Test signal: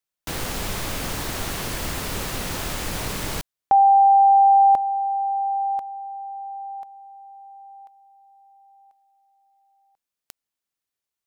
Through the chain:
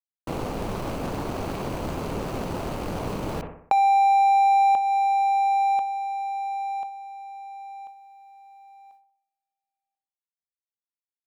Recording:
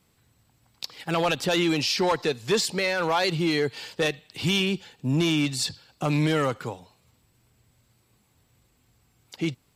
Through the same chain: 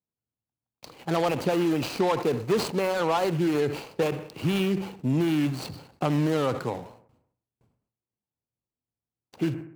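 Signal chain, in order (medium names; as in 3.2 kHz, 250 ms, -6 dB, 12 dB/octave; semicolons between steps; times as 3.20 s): median filter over 25 samples; gate with hold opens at -55 dBFS, closes at -58 dBFS, hold 34 ms, range -30 dB; bass shelf 98 Hz -10.5 dB; compression 3:1, threshold -26 dBFS; on a send: bucket-brigade echo 62 ms, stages 1024, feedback 54%, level -21 dB; on the sum: decay stretcher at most 96 dB/s; trim +4.5 dB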